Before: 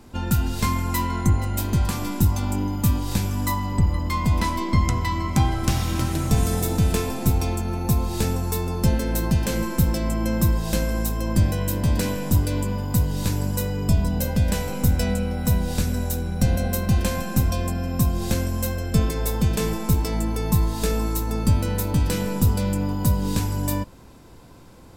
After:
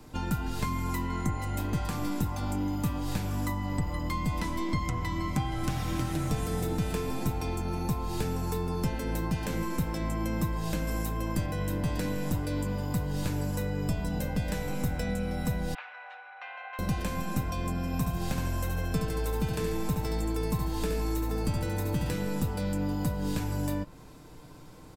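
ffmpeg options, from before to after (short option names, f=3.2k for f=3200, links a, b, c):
-filter_complex "[0:a]asettb=1/sr,asplit=3[a][b][c];[a]atrim=end=10.874[d];[b]atrim=start=10.87:end=11.46,asetpts=PTS-STARTPTS,afade=t=in:d=0.004:c=qsin,afade=t=out:st=0.586:d=0.004:c=qsin,highshelf=f=4.8k:g=10.5[e];[c]atrim=start=11.456[f];[d][e]acrossfade=d=0.004:c1=hsin:c2=qsin[g];[g][f]acrossfade=d=0.004:c1=qsin:c2=hsin,asettb=1/sr,asplit=3[h][i][j];[h]atrim=end=15.744[k];[i]atrim=start=15.74:end=16.79,asetpts=PTS-STARTPTS,afade=t=in:d=0.004:c=qsin,afade=t=out:st=1.046:d=0.004:c=qsin,asuperpass=centerf=1500:order=8:qfactor=0.75[l];[j]atrim=start=16.786[m];[k][l]acrossfade=d=0.004:c1=hsin:c2=qsin[n];[n][m]acrossfade=d=0.004:c1=qsin:c2=hsin,asettb=1/sr,asplit=3[o][p][q];[o]atrim=end=17.864[r];[p]atrim=start=17.86:end=22.14,asetpts=PTS-STARTPTS,afade=t=in:d=0.004:c=qsin,afade=t=out:st=4.276:d=0.004:c=qsin,aecho=1:1:70|140|210|280:0.596|0.208|0.073|0.0255,atrim=end_sample=188748[s];[q]atrim=start=22.136[t];[r][s]acrossfade=d=0.004:c1=hsin:c2=qsin[u];[u][t]acrossfade=d=0.004:c1=qsin:c2=hsin,aecho=1:1:6.6:0.43,acrossover=split=400|1300|2800[v][w][x][y];[v]acompressor=threshold=-25dB:ratio=4[z];[w]acompressor=threshold=-36dB:ratio=4[aa];[x]acompressor=threshold=-41dB:ratio=4[ab];[y]acompressor=threshold=-42dB:ratio=4[ac];[z][aa][ab][ac]amix=inputs=4:normalize=0,volume=-3dB"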